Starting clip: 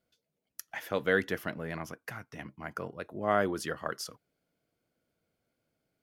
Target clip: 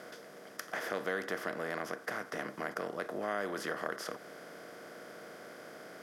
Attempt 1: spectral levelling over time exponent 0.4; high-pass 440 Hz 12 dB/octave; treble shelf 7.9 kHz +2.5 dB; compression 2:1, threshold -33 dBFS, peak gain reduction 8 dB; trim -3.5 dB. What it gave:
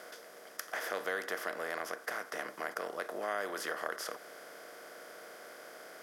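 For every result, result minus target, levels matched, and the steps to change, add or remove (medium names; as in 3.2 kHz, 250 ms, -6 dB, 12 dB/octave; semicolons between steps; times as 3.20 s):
250 Hz band -6.5 dB; 8 kHz band +3.5 dB
change: high-pass 190 Hz 12 dB/octave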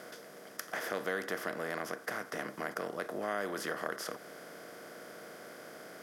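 8 kHz band +3.0 dB
change: treble shelf 7.9 kHz -4.5 dB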